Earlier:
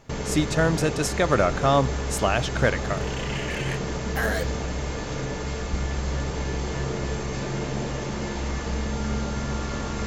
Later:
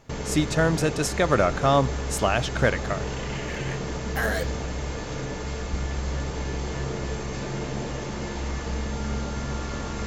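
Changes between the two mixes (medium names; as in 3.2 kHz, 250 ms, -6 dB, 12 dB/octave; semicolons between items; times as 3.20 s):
first sound: send -8.0 dB; second sound: add low-pass 1.7 kHz 6 dB/octave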